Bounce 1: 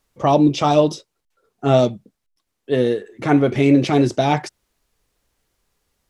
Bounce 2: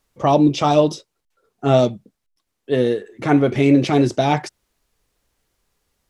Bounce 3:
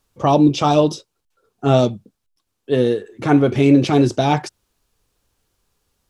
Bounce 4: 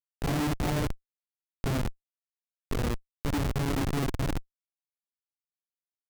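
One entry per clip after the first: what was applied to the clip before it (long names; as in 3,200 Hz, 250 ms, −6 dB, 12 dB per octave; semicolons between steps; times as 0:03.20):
no processing that can be heard
thirty-one-band graphic EQ 100 Hz +5 dB, 630 Hz −3 dB, 2,000 Hz −6 dB; level +1.5 dB
random phases in long frames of 200 ms; dynamic equaliser 1,100 Hz, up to −6 dB, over −31 dBFS, Q 1; comparator with hysteresis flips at −13.5 dBFS; level −7.5 dB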